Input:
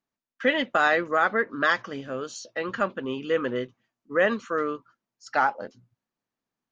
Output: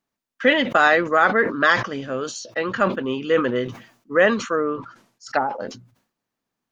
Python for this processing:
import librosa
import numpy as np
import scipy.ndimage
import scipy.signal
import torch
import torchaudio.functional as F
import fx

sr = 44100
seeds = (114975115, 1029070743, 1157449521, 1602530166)

y = fx.env_lowpass_down(x, sr, base_hz=610.0, full_db=-20.0, at=(4.55, 5.49), fade=0.02)
y = fx.sustainer(y, sr, db_per_s=110.0)
y = y * 10.0 ** (5.5 / 20.0)